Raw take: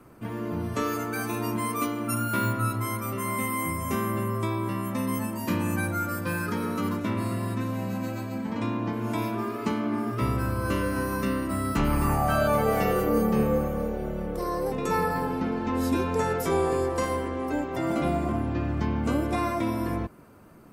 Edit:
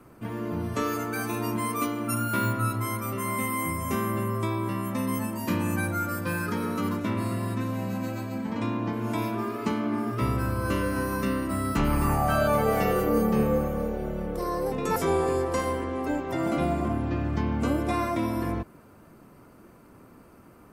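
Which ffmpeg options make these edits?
-filter_complex "[0:a]asplit=2[s0][s1];[s0]atrim=end=14.962[s2];[s1]atrim=start=16.398[s3];[s2][s3]acrossfade=d=0.004:c1=hsin:c2=hsin"

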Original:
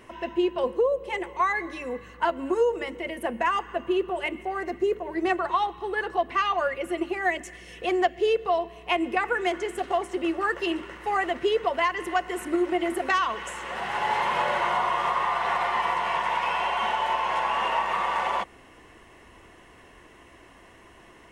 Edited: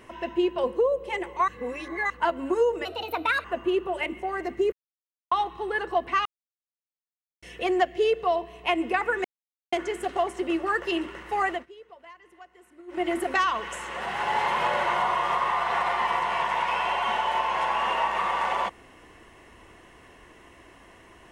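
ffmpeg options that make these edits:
-filter_complex "[0:a]asplit=12[s0][s1][s2][s3][s4][s5][s6][s7][s8][s9][s10][s11];[s0]atrim=end=1.482[s12];[s1]atrim=start=1.478:end=2.102,asetpts=PTS-STARTPTS,areverse[s13];[s2]atrim=start=2.098:end=2.854[s14];[s3]atrim=start=2.85:end=3.67,asetpts=PTS-STARTPTS,asetrate=60858,aresample=44100,atrim=end_sample=26204,asetpts=PTS-STARTPTS[s15];[s4]atrim=start=3.666:end=4.95,asetpts=PTS-STARTPTS,afade=t=out:st=1.28:d=0.004:c=hsin[s16];[s5]atrim=start=4.95:end=5.54,asetpts=PTS-STARTPTS,volume=0[s17];[s6]atrim=start=5.54:end=6.48,asetpts=PTS-STARTPTS,afade=t=in:d=0.004:c=hsin,afade=t=out:st=0.936:d=0.004:c=hsin[s18];[s7]atrim=start=6.48:end=7.65,asetpts=PTS-STARTPTS,volume=0[s19];[s8]atrim=start=7.65:end=9.47,asetpts=PTS-STARTPTS,afade=t=in:d=0.004:c=hsin,afade=t=out:st=1.816:d=0.004:c=hsin,apad=pad_dur=0.48[s20];[s9]atrim=start=9.47:end=11.41,asetpts=PTS-STARTPTS,afade=t=in:d=0.004:c=hsin,afade=t=out:st=1.7:d=0.24:c=qsin:silence=0.0668344[s21];[s10]atrim=start=11.41:end=12.62,asetpts=PTS-STARTPTS,volume=0.0668[s22];[s11]atrim=start=12.62,asetpts=PTS-STARTPTS,afade=t=in:d=0.24:c=qsin:silence=0.0668344[s23];[s12][s13]acrossfade=d=0.004:c1=hsin:c2=hsin[s24];[s24][s14]acrossfade=d=0.004:c1=hsin:c2=hsin[s25];[s25][s15]acrossfade=d=0.004:c1=hsin:c2=hsin[s26];[s16][s17][s18][s19][s20][s21][s22][s23]concat=n=8:v=0:a=1[s27];[s26][s27]acrossfade=d=0.004:c1=hsin:c2=hsin"

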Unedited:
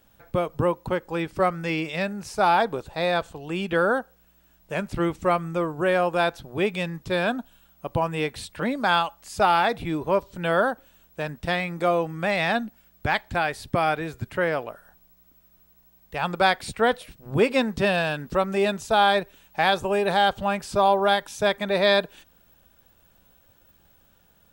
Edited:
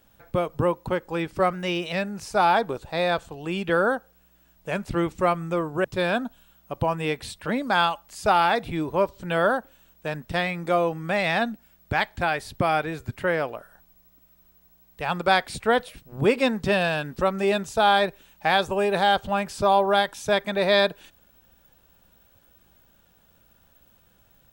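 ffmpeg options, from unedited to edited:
-filter_complex "[0:a]asplit=4[s0][s1][s2][s3];[s0]atrim=end=1.534[s4];[s1]atrim=start=1.53:end=1.96,asetpts=PTS-STARTPTS,asetrate=48069,aresample=44100,atrim=end_sample=17397,asetpts=PTS-STARTPTS[s5];[s2]atrim=start=1.956:end=5.882[s6];[s3]atrim=start=6.978[s7];[s4][s5]acrossfade=d=0.004:c1=hsin:c2=hsin[s8];[s8][s6]acrossfade=d=0.004:c1=hsin:c2=hsin[s9];[s9][s7]acrossfade=d=0.004:c1=hsin:c2=hsin"

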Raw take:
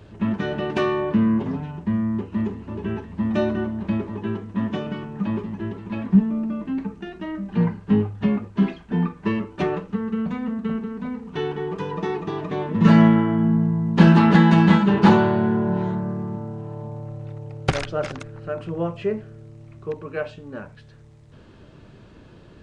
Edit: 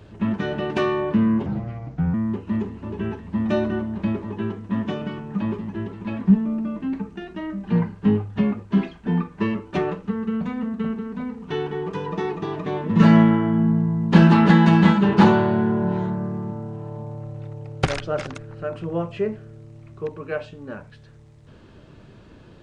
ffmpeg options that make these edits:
-filter_complex "[0:a]asplit=3[s0][s1][s2];[s0]atrim=end=1.464[s3];[s1]atrim=start=1.46:end=1.99,asetpts=PTS-STARTPTS,asetrate=34398,aresample=44100,atrim=end_sample=29965,asetpts=PTS-STARTPTS[s4];[s2]atrim=start=1.986[s5];[s3][s4]acrossfade=d=0.004:c1=hsin:c2=hsin[s6];[s6][s5]acrossfade=d=0.004:c1=hsin:c2=hsin"

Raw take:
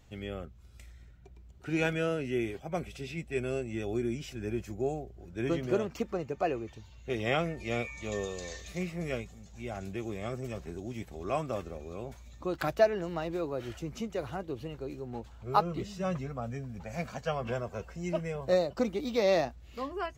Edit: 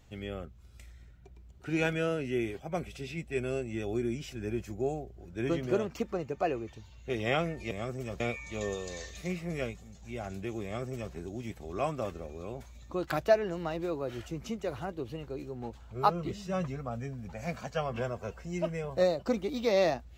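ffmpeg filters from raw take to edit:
-filter_complex "[0:a]asplit=3[s0][s1][s2];[s0]atrim=end=7.712[s3];[s1]atrim=start=10.148:end=10.642[s4];[s2]atrim=start=7.708[s5];[s3][s4]acrossfade=d=0.004:c1=hsin:c2=hsin[s6];[s6][s5]acrossfade=d=0.004:c1=hsin:c2=hsin"

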